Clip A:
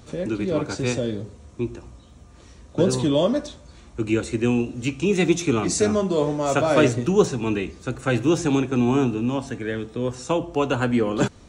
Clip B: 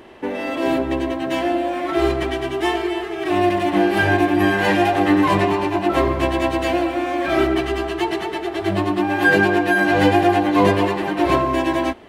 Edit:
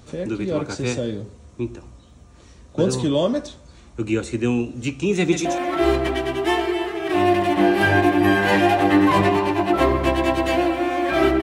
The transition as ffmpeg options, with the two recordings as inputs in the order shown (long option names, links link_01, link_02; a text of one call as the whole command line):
ffmpeg -i cue0.wav -i cue1.wav -filter_complex "[0:a]apad=whole_dur=11.42,atrim=end=11.42,atrim=end=5.452[link_01];[1:a]atrim=start=1.608:end=7.58[link_02];[link_01][link_02]acrossfade=duration=0.004:curve1=hsin:curve2=hsin,asplit=2[link_03][link_04];[link_04]afade=type=in:start_time=5.19:duration=0.01,afade=type=out:start_time=5.45:duration=0.01,aecho=0:1:130|260:0.473151|0.0473151[link_05];[link_03][link_05]amix=inputs=2:normalize=0" out.wav